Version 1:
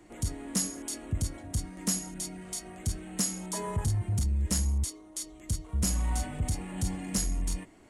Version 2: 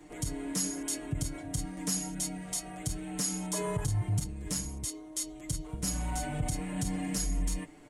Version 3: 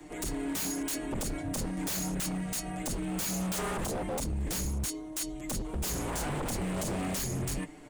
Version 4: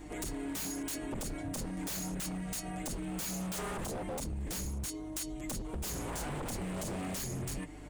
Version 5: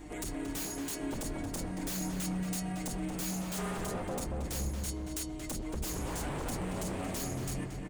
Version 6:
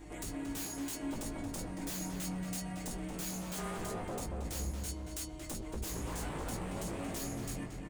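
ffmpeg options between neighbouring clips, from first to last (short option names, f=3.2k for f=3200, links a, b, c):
-af "alimiter=limit=-24dB:level=0:latency=1:release=101,aecho=1:1:6.7:0.9"
-filter_complex "[0:a]acrossover=split=210|630|1800[a][b][c][d];[a]dynaudnorm=f=230:g=9:m=5.5dB[e];[e][b][c][d]amix=inputs=4:normalize=0,aeval=exprs='0.0251*(abs(mod(val(0)/0.0251+3,4)-2)-1)':c=same,volume=4dB"
-af "aeval=exprs='val(0)+0.00355*(sin(2*PI*50*n/s)+sin(2*PI*2*50*n/s)/2+sin(2*PI*3*50*n/s)/3+sin(2*PI*4*50*n/s)/4+sin(2*PI*5*50*n/s)/5)':c=same,acompressor=threshold=-36dB:ratio=4"
-filter_complex "[0:a]asplit=2[a][b];[b]adelay=228,lowpass=f=2.5k:p=1,volume=-3.5dB,asplit=2[c][d];[d]adelay=228,lowpass=f=2.5k:p=1,volume=0.49,asplit=2[e][f];[f]adelay=228,lowpass=f=2.5k:p=1,volume=0.49,asplit=2[g][h];[h]adelay=228,lowpass=f=2.5k:p=1,volume=0.49,asplit=2[i][j];[j]adelay=228,lowpass=f=2.5k:p=1,volume=0.49,asplit=2[k][l];[l]adelay=228,lowpass=f=2.5k:p=1,volume=0.49[m];[a][c][e][g][i][k][m]amix=inputs=7:normalize=0"
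-filter_complex "[0:a]asplit=2[a][b];[b]adelay=18,volume=-5dB[c];[a][c]amix=inputs=2:normalize=0,volume=-4dB"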